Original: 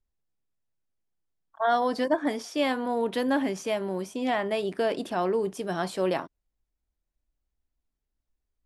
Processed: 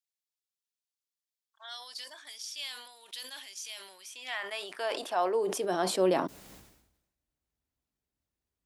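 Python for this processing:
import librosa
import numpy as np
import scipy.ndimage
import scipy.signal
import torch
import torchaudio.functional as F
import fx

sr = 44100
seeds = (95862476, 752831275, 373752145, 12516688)

y = fx.dynamic_eq(x, sr, hz=1900.0, q=0.93, threshold_db=-43.0, ratio=4.0, max_db=-4)
y = fx.filter_sweep_highpass(y, sr, from_hz=3700.0, to_hz=91.0, start_s=3.73, end_s=6.91, q=1.1)
y = fx.sustainer(y, sr, db_per_s=63.0)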